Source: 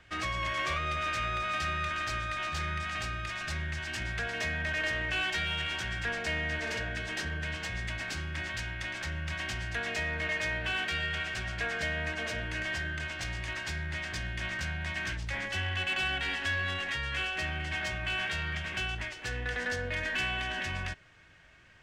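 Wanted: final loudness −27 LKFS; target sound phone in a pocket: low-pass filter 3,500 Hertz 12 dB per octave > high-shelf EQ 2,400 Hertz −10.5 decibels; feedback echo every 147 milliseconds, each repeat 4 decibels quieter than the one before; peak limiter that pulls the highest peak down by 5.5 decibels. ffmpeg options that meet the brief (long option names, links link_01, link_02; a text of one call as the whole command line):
ffmpeg -i in.wav -af "alimiter=level_in=2dB:limit=-24dB:level=0:latency=1,volume=-2dB,lowpass=3500,highshelf=frequency=2400:gain=-10.5,aecho=1:1:147|294|441|588|735|882|1029|1176|1323:0.631|0.398|0.25|0.158|0.0994|0.0626|0.0394|0.0249|0.0157,volume=9dB" out.wav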